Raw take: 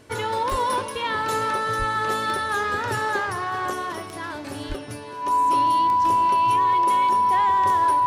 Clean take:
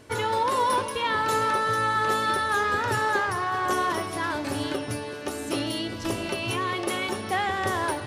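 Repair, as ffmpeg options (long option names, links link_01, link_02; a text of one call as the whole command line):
ffmpeg -i in.wav -filter_complex "[0:a]adeclick=threshold=4,bandreject=frequency=990:width=30,asplit=3[link_01][link_02][link_03];[link_01]afade=type=out:start_time=0.5:duration=0.02[link_04];[link_02]highpass=frequency=140:width=0.5412,highpass=frequency=140:width=1.3066,afade=type=in:start_time=0.5:duration=0.02,afade=type=out:start_time=0.62:duration=0.02[link_05];[link_03]afade=type=in:start_time=0.62:duration=0.02[link_06];[link_04][link_05][link_06]amix=inputs=3:normalize=0,asplit=3[link_07][link_08][link_09];[link_07]afade=type=out:start_time=1.78:duration=0.02[link_10];[link_08]highpass=frequency=140:width=0.5412,highpass=frequency=140:width=1.3066,afade=type=in:start_time=1.78:duration=0.02,afade=type=out:start_time=1.9:duration=0.02[link_11];[link_09]afade=type=in:start_time=1.9:duration=0.02[link_12];[link_10][link_11][link_12]amix=inputs=3:normalize=0,asplit=3[link_13][link_14][link_15];[link_13]afade=type=out:start_time=4.68:duration=0.02[link_16];[link_14]highpass=frequency=140:width=0.5412,highpass=frequency=140:width=1.3066,afade=type=in:start_time=4.68:duration=0.02,afade=type=out:start_time=4.8:duration=0.02[link_17];[link_15]afade=type=in:start_time=4.8:duration=0.02[link_18];[link_16][link_17][link_18]amix=inputs=3:normalize=0,asetnsamples=nb_out_samples=441:pad=0,asendcmd='3.7 volume volume 4dB',volume=0dB" out.wav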